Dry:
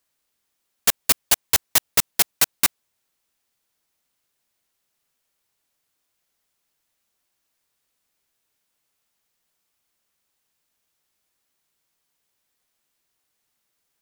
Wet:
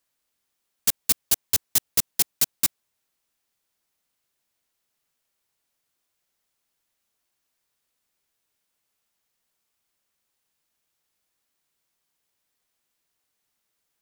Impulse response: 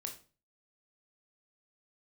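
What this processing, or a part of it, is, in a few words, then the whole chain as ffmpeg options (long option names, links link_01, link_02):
one-band saturation: -filter_complex "[0:a]acrossover=split=400|3600[link_01][link_02][link_03];[link_02]asoftclip=type=tanh:threshold=-31.5dB[link_04];[link_01][link_04][link_03]amix=inputs=3:normalize=0,volume=-2.5dB"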